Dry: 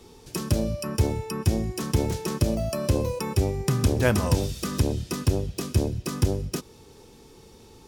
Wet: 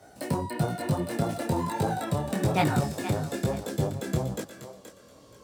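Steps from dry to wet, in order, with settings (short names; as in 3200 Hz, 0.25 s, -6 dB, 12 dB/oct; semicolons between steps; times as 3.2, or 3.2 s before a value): speed glide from 168% -> 122%; HPF 89 Hz; high shelf 11000 Hz -10.5 dB; notch 6700 Hz, Q 20; thinning echo 0.476 s, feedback 23%, high-pass 540 Hz, level -9 dB; detuned doubles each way 39 cents; gain +1 dB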